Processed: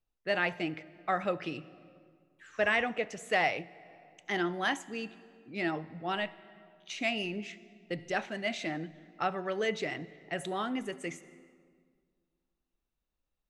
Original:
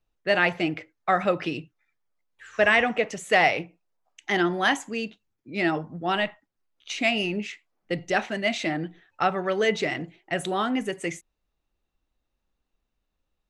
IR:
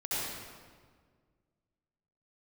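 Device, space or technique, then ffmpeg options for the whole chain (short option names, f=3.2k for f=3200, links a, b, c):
compressed reverb return: -filter_complex "[0:a]asplit=2[a][b];[1:a]atrim=start_sample=2205[c];[b][c]afir=irnorm=-1:irlink=0,acompressor=threshold=-21dB:ratio=6,volume=-19.5dB[d];[a][d]amix=inputs=2:normalize=0,volume=-8.5dB"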